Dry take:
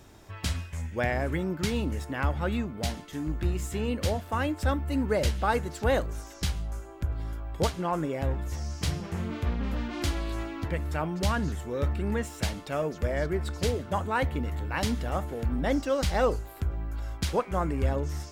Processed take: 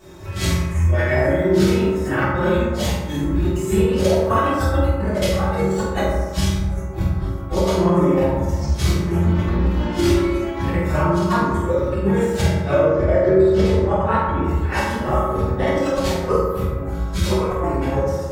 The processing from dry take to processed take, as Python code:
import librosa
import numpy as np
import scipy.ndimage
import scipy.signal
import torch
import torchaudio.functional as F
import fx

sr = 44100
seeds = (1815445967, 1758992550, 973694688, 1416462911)

y = fx.phase_scramble(x, sr, seeds[0], window_ms=200)
y = fx.dereverb_blind(y, sr, rt60_s=0.69)
y = fx.lowpass(y, sr, hz=2400.0, slope=6, at=(12.41, 14.44))
y = fx.over_compress(y, sr, threshold_db=-30.0, ratio=-0.5)
y = fx.transient(y, sr, attack_db=9, sustain_db=-5)
y = fx.doubler(y, sr, ms=47.0, db=-6.5)
y = fx.rev_fdn(y, sr, rt60_s=1.5, lf_ratio=0.9, hf_ratio=0.35, size_ms=16.0, drr_db=-8.5)